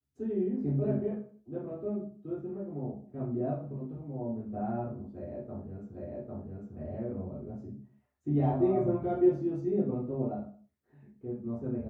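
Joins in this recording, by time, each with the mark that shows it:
5.94 s: repeat of the last 0.8 s

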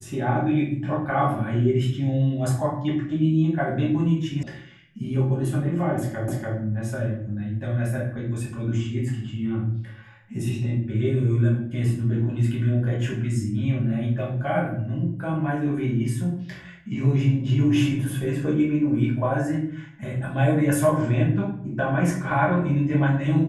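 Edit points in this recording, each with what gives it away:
4.43 s: sound stops dead
6.28 s: repeat of the last 0.29 s

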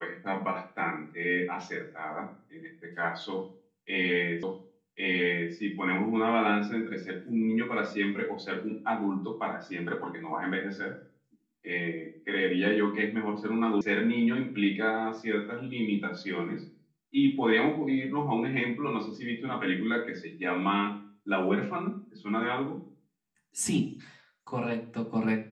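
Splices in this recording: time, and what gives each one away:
4.43 s: repeat of the last 1.1 s
13.81 s: sound stops dead

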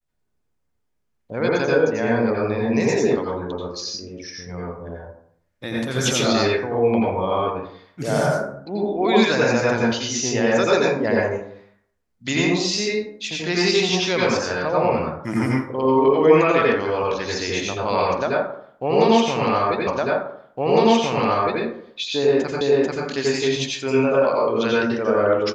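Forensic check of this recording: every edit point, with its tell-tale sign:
19.87 s: repeat of the last 1.76 s
22.61 s: repeat of the last 0.44 s

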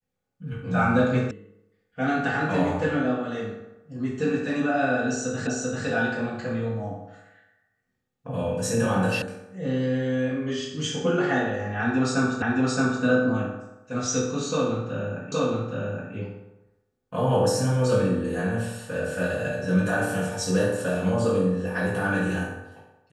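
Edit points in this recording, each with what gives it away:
1.31 s: sound stops dead
5.47 s: repeat of the last 0.39 s
9.22 s: sound stops dead
12.42 s: repeat of the last 0.62 s
15.32 s: repeat of the last 0.82 s

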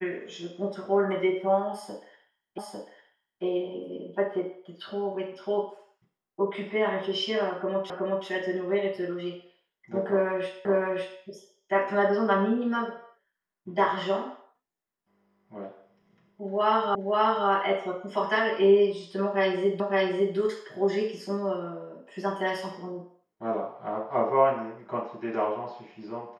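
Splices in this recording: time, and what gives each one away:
2.58 s: repeat of the last 0.85 s
7.90 s: repeat of the last 0.37 s
10.65 s: repeat of the last 0.56 s
16.95 s: repeat of the last 0.53 s
19.80 s: repeat of the last 0.56 s

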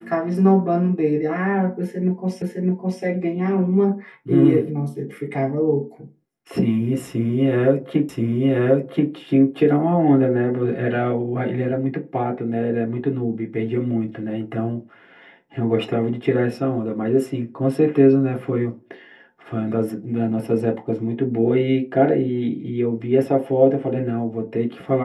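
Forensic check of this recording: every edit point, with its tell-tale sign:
2.42 s: repeat of the last 0.61 s
8.09 s: repeat of the last 1.03 s

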